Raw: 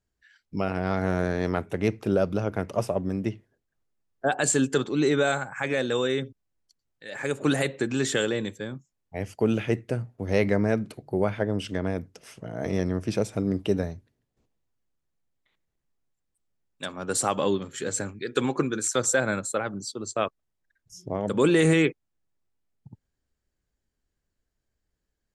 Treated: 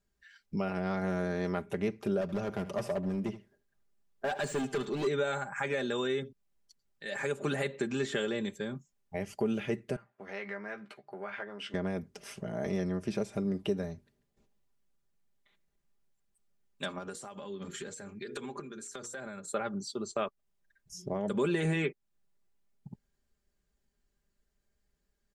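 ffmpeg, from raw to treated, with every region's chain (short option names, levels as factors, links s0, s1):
-filter_complex "[0:a]asettb=1/sr,asplit=3[s0][s1][s2];[s0]atrim=end=2.214[s3];[s1]atrim=start=2.21:end=5.07,asetpts=PTS-STARTPTS,afade=t=in:d=0.004:c=qsin,afade=t=out:st=2.856:d=0.004:c=qsin,asoftclip=type=hard:threshold=0.075,aecho=1:1:76:0.158,atrim=end_sample=126126[s4];[s2]atrim=start=5.066[s5];[s3][s4]acrossfade=d=0.004:c1=hsin:c2=qsin[s6];[s6][s5]acrossfade=d=0.004:c1=qsin:c2=hsin,asettb=1/sr,asplit=3[s7][s8][s9];[s7]atrim=end=9.964[s10];[s8]atrim=start=9.96:end=11.74,asetpts=PTS-STARTPTS,afade=t=in:d=0.004:c=qsin,afade=t=out:st=1.776:d=0.004:c=qsin,acompressor=threshold=0.0447:ratio=4:attack=3.2:release=140:knee=1:detection=peak,bandpass=f=1600:t=q:w=1.2,asplit=2[s11][s12];[s12]adelay=15,volume=0.447[s13];[s11][s13]amix=inputs=2:normalize=0,atrim=end_sample=78498[s14];[s9]atrim=start=11.736[s15];[s10][s14]acrossfade=d=0.004:c1=hsin:c2=qsin[s16];[s16][s15]acrossfade=d=0.004:c1=qsin:c2=hsin,asettb=1/sr,asplit=3[s17][s18][s19];[s17]atrim=end=16.984[s20];[s18]atrim=start=16.98:end=19.48,asetpts=PTS-STARTPTS,afade=t=in:d=0.004:c=qsin,afade=t=out:st=2.496:d=0.004:c=qsin,bandreject=f=60:t=h:w=6,bandreject=f=120:t=h:w=6,bandreject=f=180:t=h:w=6,bandreject=f=240:t=h:w=6,bandreject=f=300:t=h:w=6,bandreject=f=360:t=h:w=6,bandreject=f=420:t=h:w=6,bandreject=f=480:t=h:w=6,acompressor=threshold=0.0158:ratio=20:attack=3.2:release=140:knee=1:detection=peak,tremolo=f=1.4:d=0.45[s21];[s19]atrim=start=19.476[s22];[s20][s21]acrossfade=d=0.004:c1=hsin:c2=qsin[s23];[s23][s22]acrossfade=d=0.004:c1=qsin:c2=hsin,acrossover=split=3800[s24][s25];[s25]acompressor=threshold=0.00794:ratio=4:attack=1:release=60[s26];[s24][s26]amix=inputs=2:normalize=0,aecho=1:1:5:0.6,acompressor=threshold=0.0178:ratio=2"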